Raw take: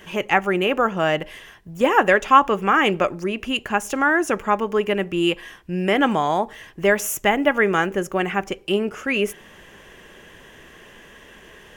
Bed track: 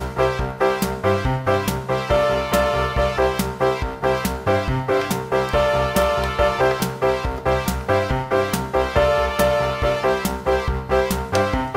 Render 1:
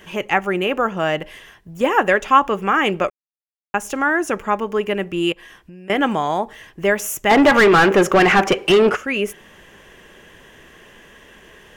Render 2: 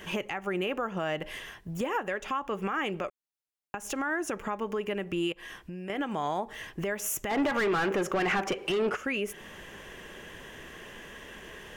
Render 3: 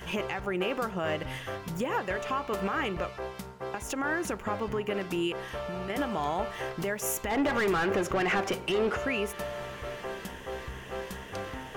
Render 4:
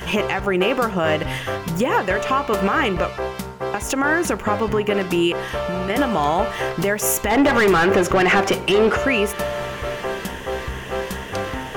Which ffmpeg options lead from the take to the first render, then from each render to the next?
-filter_complex "[0:a]asettb=1/sr,asplit=3[a][b][c];[a]atrim=end=5.324[d];[b]atrim=start=5.32:end=5.9,asetpts=PTS-STARTPTS,afade=t=in:d=0.004:c=qsin,afade=t=out:st=0.576:d=0.004:c=qsin,acompressor=threshold=-38dB:ratio=5:attack=3.2:release=140:knee=1:detection=peak[e];[c]atrim=start=5.896[f];[d][e]acrossfade=d=0.004:c1=hsin:c2=qsin[g];[g][f]acrossfade=d=0.004:c1=qsin:c2=hsin,asplit=3[h][i][j];[h]afade=t=out:st=7.29:d=0.02[k];[i]asplit=2[l][m];[m]highpass=f=720:p=1,volume=29dB,asoftclip=type=tanh:threshold=-3.5dB[n];[l][n]amix=inputs=2:normalize=0,lowpass=f=1.9k:p=1,volume=-6dB,afade=t=in:st=7.29:d=0.02,afade=t=out:st=8.95:d=0.02[o];[j]afade=t=in:st=8.95:d=0.02[p];[k][o][p]amix=inputs=3:normalize=0,asplit=3[q][r][s];[q]atrim=end=3.1,asetpts=PTS-STARTPTS,afade=t=out:st=3.096:d=0.004:c=hsin[t];[r]atrim=start=3.1:end=3.74,asetpts=PTS-STARTPTS,volume=0[u];[s]atrim=start=3.74,asetpts=PTS-STARTPTS,afade=t=in:d=0.004:c=hsin[v];[t][u][v]concat=n=3:v=0:a=1"
-af "acompressor=threshold=-25dB:ratio=6,alimiter=limit=-21.5dB:level=0:latency=1:release=152"
-filter_complex "[1:a]volume=-19dB[a];[0:a][a]amix=inputs=2:normalize=0"
-af "volume=11.5dB"

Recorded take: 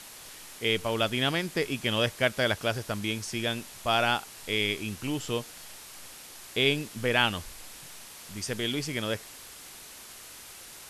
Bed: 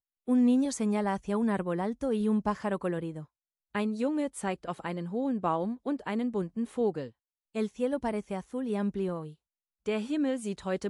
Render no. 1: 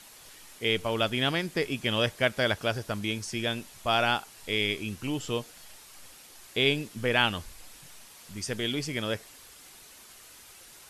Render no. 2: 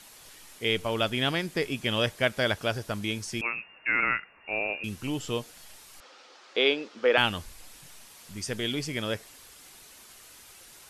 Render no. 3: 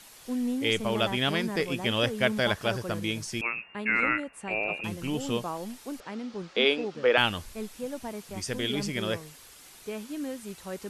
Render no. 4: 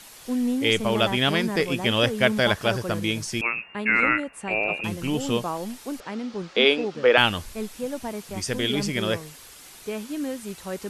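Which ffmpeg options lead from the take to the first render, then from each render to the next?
-af "afftdn=nr=6:nf=-47"
-filter_complex "[0:a]asettb=1/sr,asplit=3[a][b][c];[a]atrim=end=3.414[d];[b]atrim=start=3.41:end=4.84,asetpts=PTS-STARTPTS,afade=t=in:d=0.004:c=qsin,afade=t=out:st=1.426:d=0.004:c=qsin,lowpass=f=2.4k:t=q:w=0.5098,lowpass=f=2.4k:t=q:w=0.6013,lowpass=f=2.4k:t=q:w=0.9,lowpass=f=2.4k:t=q:w=2.563,afreqshift=-2800[e];[c]atrim=start=4.836[f];[d][e]acrossfade=d=0.004:c1=hsin:c2=qsin[g];[g][f]acrossfade=d=0.004:c1=qsin:c2=hsin,asettb=1/sr,asplit=3[h][i][j];[h]atrim=end=6.004[k];[i]atrim=start=6:end=7.18,asetpts=PTS-STARTPTS,afade=t=in:d=0.004:c=qsin,afade=t=out:st=1.176:d=0.004:c=qsin,highpass=f=270:w=0.5412,highpass=f=270:w=1.3066,equalizer=f=510:t=q:w=4:g=8,equalizer=f=830:t=q:w=4:g=4,equalizer=f=1.3k:t=q:w=4:g=8,lowpass=f=5.4k:w=0.5412,lowpass=f=5.4k:w=1.3066[l];[j]atrim=start=7.176[m];[k][l]acrossfade=d=0.004:c1=hsin:c2=qsin[n];[n][m]acrossfade=d=0.004:c1=qsin:c2=hsin"
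-filter_complex "[1:a]volume=-6dB[a];[0:a][a]amix=inputs=2:normalize=0"
-af "volume=5dB"

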